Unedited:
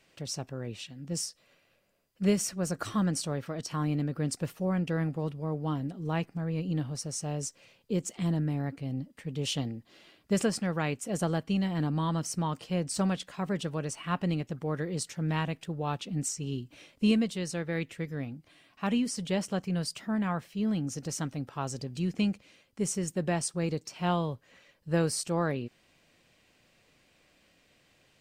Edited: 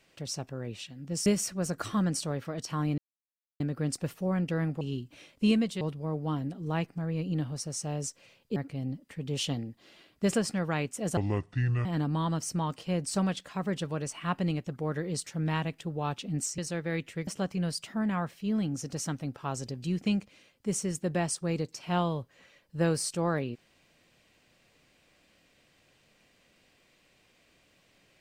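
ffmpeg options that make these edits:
-filter_complex "[0:a]asplit=10[s0][s1][s2][s3][s4][s5][s6][s7][s8][s9];[s0]atrim=end=1.262[s10];[s1]atrim=start=2.268:end=3.99,asetpts=PTS-STARTPTS,afade=t=out:st=1.718:d=0.004:c=hsin,apad=pad_dur=0.62[s11];[s2]atrim=start=3.99:end=5.202,asetpts=PTS-STARTPTS,afade=t=in:d=0.004:c=hsin[s12];[s3]atrim=start=16.408:end=17.412[s13];[s4]atrim=start=5.198:end=7.952[s14];[s5]atrim=start=8.638:end=11.254[s15];[s6]atrim=start=11.25:end=11.68,asetpts=PTS-STARTPTS,asetrate=27783,aresample=44100[s16];[s7]atrim=start=11.676:end=16.412[s17];[s8]atrim=start=17.408:end=18.102[s18];[s9]atrim=start=19.398[s19];[s11][s12]concat=n=2:v=0:a=1[s20];[s10][s20]acrossfade=d=0.004:c1=hsin:c2=hsin[s21];[s21][s13]acrossfade=d=0.004:c1=hsin:c2=hsin[s22];[s22][s14]acrossfade=d=0.004:c1=hsin:c2=hsin[s23];[s23][s15]acrossfade=d=0.004:c1=hsin:c2=hsin[s24];[s24][s16]acrossfade=d=0.004:c1=hsin:c2=hsin[s25];[s25][s17]acrossfade=d=0.004:c1=hsin:c2=hsin[s26];[s26][s18]acrossfade=d=0.004:c1=hsin:c2=hsin[s27];[s27][s19]acrossfade=d=0.004:c1=hsin:c2=hsin"

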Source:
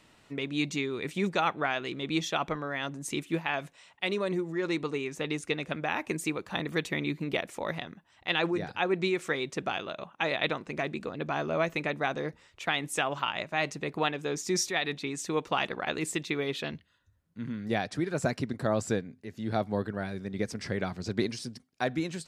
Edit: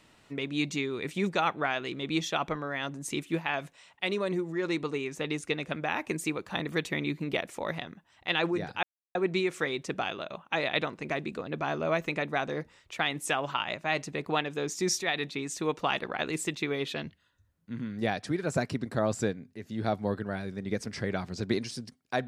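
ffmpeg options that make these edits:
-filter_complex "[0:a]asplit=2[s0][s1];[s0]atrim=end=8.83,asetpts=PTS-STARTPTS,afade=t=out:st=8.826:d=0.004:c=hsin,apad=pad_dur=0.32[s2];[s1]atrim=start=8.83,asetpts=PTS-STARTPTS,afade=t=in:d=0.004:c=hsin[s3];[s2][s3]concat=n=2:v=0:a=1"

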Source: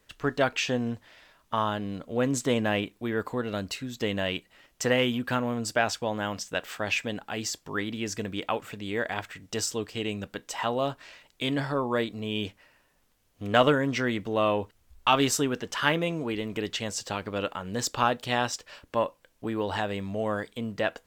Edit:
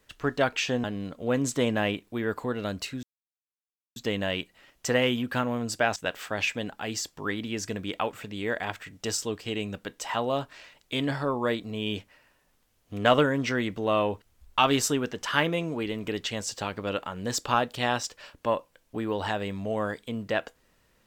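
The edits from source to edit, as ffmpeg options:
-filter_complex "[0:a]asplit=4[s0][s1][s2][s3];[s0]atrim=end=0.842[s4];[s1]atrim=start=1.728:end=3.92,asetpts=PTS-STARTPTS,afade=t=out:st=2.188:d=0.004:c=hsin,apad=pad_dur=0.93[s5];[s2]atrim=start=3.92:end=5.922,asetpts=PTS-STARTPTS,afade=t=in:d=0.004:c=hsin[s6];[s3]atrim=start=6.448[s7];[s5][s6]concat=n=2:v=0:a=1[s8];[s4][s8]acrossfade=d=0.004:c1=hsin:c2=hsin[s9];[s9][s7]acrossfade=d=0.004:c1=hsin:c2=hsin"

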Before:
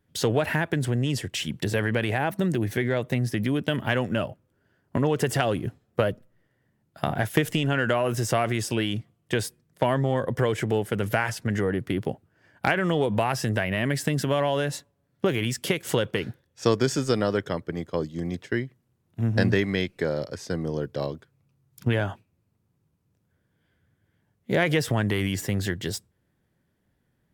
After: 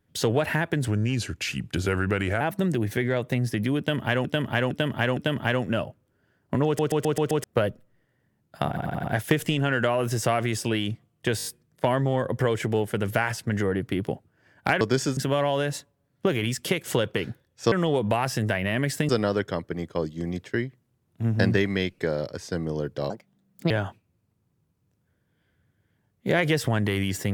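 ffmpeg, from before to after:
-filter_complex "[0:a]asplit=26[s0][s1][s2][s3][s4][s5][s6][s7][s8][s9][s10][s11][s12][s13][s14][s15][s16][s17][s18][s19][s20][s21][s22][s23][s24][s25];[s0]atrim=end=0.884[s26];[s1]atrim=start=0.88:end=2.21,asetpts=PTS-STARTPTS,asetrate=38367,aresample=44100,atrim=end_sample=67417,asetpts=PTS-STARTPTS[s27];[s2]atrim=start=2.206:end=4.052[s28];[s3]atrim=start=3.588:end=4.052[s29];[s4]atrim=start=3.588:end=4.052[s30];[s5]atrim=start=3.588:end=5.212[s31];[s6]atrim=start=5.078:end=5.212[s32];[s7]atrim=start=5.078:end=5.212[s33];[s8]atrim=start=5.078:end=5.212[s34];[s9]atrim=start=5.078:end=5.212[s35];[s10]atrim=start=5.078:end=5.212[s36];[s11]atrim=start=5.858:end=7.192[s37];[s12]atrim=start=7.098:end=7.192[s38];[s13]atrim=start=7.098:end=7.192[s39];[s14]atrim=start=7.098:end=7.192[s40];[s15]atrim=start=7.098:end=9.452[s41];[s16]atrim=start=9.428:end=9.452[s42];[s17]atrim=start=9.428:end=9.452[s43];[s18]atrim=start=9.428:end=9.452[s44];[s19]atrim=start=9.428:end=12.792[s45];[s20]atrim=start=16.708:end=17.072[s46];[s21]atrim=start=14.158:end=16.712[s47];[s22]atrim=start=12.788:end=14.162[s48];[s23]atrim=start=17.068:end=21.084[s49];[s24]atrim=start=21.08:end=21.94,asetpts=PTS-STARTPTS,asetrate=62622,aresample=44100,atrim=end_sample=26708,asetpts=PTS-STARTPTS[s50];[s25]atrim=start=21.936[s51];[s26][s27]acrossfade=d=0.004:c1=hsin:c2=hsin[s52];[s52][s28]acrossfade=d=0.004:c1=hsin:c2=hsin[s53];[s53][s29]acrossfade=d=0.004:c1=hsin:c2=hsin[s54];[s54][s30]acrossfade=d=0.004:c1=hsin:c2=hsin[s55];[s55][s31]acrossfade=d=0.004:c1=hsin:c2=hsin[s56];[s56][s32]acrossfade=d=0.004:c1=hsin:c2=hsin[s57];[s57][s33]acrossfade=d=0.004:c1=hsin:c2=hsin[s58];[s58][s34]acrossfade=d=0.004:c1=hsin:c2=hsin[s59];[s59][s35]acrossfade=d=0.004:c1=hsin:c2=hsin[s60];[s60][s36]acrossfade=d=0.004:c1=hsin:c2=hsin[s61];[s61][s37]acrossfade=d=0.004:c1=hsin:c2=hsin[s62];[s62][s38]acrossfade=d=0.004:c1=hsin:c2=hsin[s63];[s63][s39]acrossfade=d=0.004:c1=hsin:c2=hsin[s64];[s64][s40]acrossfade=d=0.004:c1=hsin:c2=hsin[s65];[s65][s41]acrossfade=d=0.004:c1=hsin:c2=hsin[s66];[s66][s42]acrossfade=d=0.004:c1=hsin:c2=hsin[s67];[s67][s43]acrossfade=d=0.004:c1=hsin:c2=hsin[s68];[s68][s44]acrossfade=d=0.004:c1=hsin:c2=hsin[s69];[s69][s45]acrossfade=d=0.004:c1=hsin:c2=hsin[s70];[s70][s46]acrossfade=d=0.004:c1=hsin:c2=hsin[s71];[s71][s47]acrossfade=d=0.004:c1=hsin:c2=hsin[s72];[s72][s48]acrossfade=d=0.004:c1=hsin:c2=hsin[s73];[s73][s49]acrossfade=d=0.004:c1=hsin:c2=hsin[s74];[s74][s50]acrossfade=d=0.004:c1=hsin:c2=hsin[s75];[s75][s51]acrossfade=d=0.004:c1=hsin:c2=hsin"

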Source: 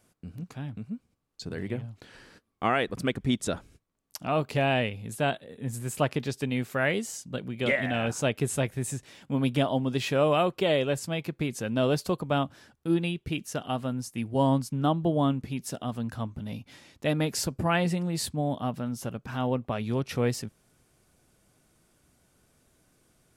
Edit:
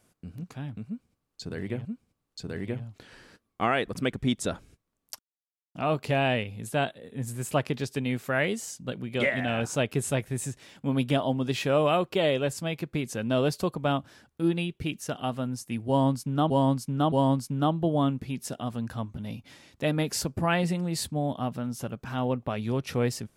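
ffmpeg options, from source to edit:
-filter_complex "[0:a]asplit=5[s0][s1][s2][s3][s4];[s0]atrim=end=1.852[s5];[s1]atrim=start=0.868:end=4.21,asetpts=PTS-STARTPTS,afade=t=out:st=3.338:d=0.004:c=hsin,apad=pad_dur=0.56[s6];[s2]atrim=start=4.21:end=14.962,asetpts=PTS-STARTPTS,afade=t=in:d=0.004:c=hsin[s7];[s3]atrim=start=14.338:end=14.962[s8];[s4]atrim=start=14.338[s9];[s6][s7]concat=n=2:v=0:a=1[s10];[s5][s10]acrossfade=d=0.004:c1=hsin:c2=hsin[s11];[s11][s8]acrossfade=d=0.004:c1=hsin:c2=hsin[s12];[s12][s9]acrossfade=d=0.004:c1=hsin:c2=hsin"

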